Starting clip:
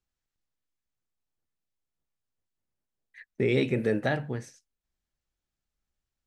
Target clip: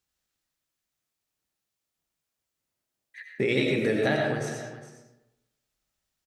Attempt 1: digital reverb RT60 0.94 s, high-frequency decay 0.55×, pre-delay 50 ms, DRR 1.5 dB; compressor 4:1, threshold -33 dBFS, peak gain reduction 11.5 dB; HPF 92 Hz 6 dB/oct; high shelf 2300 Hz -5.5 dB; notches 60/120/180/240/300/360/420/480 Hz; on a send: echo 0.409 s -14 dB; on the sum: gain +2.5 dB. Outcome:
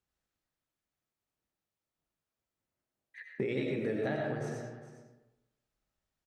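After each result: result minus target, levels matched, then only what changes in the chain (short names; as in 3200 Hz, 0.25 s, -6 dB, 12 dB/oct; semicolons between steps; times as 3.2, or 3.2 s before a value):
compressor: peak gain reduction +8 dB; 4000 Hz band -7.0 dB
change: compressor 4:1, threshold -22.5 dBFS, peak gain reduction 3.5 dB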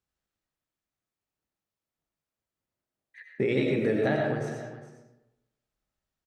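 4000 Hz band -7.0 dB
change: high shelf 2300 Hz +6 dB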